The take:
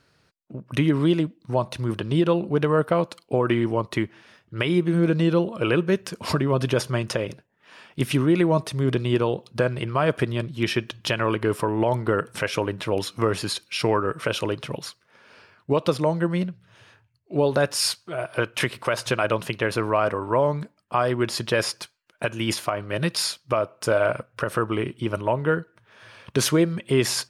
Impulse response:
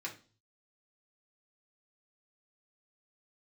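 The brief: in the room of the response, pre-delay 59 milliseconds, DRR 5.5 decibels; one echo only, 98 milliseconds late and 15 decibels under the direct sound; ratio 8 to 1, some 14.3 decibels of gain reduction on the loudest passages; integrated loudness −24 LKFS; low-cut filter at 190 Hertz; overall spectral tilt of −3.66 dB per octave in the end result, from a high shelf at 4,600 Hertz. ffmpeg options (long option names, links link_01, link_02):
-filter_complex "[0:a]highpass=190,highshelf=frequency=4600:gain=8,acompressor=threshold=-31dB:ratio=8,aecho=1:1:98:0.178,asplit=2[link_01][link_02];[1:a]atrim=start_sample=2205,adelay=59[link_03];[link_02][link_03]afir=irnorm=-1:irlink=0,volume=-6dB[link_04];[link_01][link_04]amix=inputs=2:normalize=0,volume=10.5dB"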